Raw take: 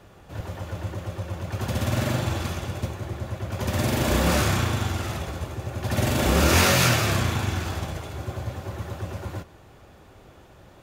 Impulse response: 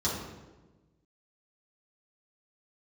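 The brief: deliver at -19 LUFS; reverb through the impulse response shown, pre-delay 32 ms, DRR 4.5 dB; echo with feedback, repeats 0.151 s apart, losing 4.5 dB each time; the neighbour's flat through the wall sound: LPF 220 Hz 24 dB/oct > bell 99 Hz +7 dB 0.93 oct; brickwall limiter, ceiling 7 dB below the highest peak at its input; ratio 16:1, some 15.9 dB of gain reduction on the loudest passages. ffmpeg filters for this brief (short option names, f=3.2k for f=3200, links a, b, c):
-filter_complex "[0:a]acompressor=threshold=-31dB:ratio=16,alimiter=level_in=4dB:limit=-24dB:level=0:latency=1,volume=-4dB,aecho=1:1:151|302|453|604|755|906|1057|1208|1359:0.596|0.357|0.214|0.129|0.0772|0.0463|0.0278|0.0167|0.01,asplit=2[a][b];[1:a]atrim=start_sample=2205,adelay=32[c];[b][c]afir=irnorm=-1:irlink=0,volume=-13dB[d];[a][d]amix=inputs=2:normalize=0,lowpass=f=220:w=0.5412,lowpass=f=220:w=1.3066,equalizer=f=99:t=o:w=0.93:g=7,volume=10dB"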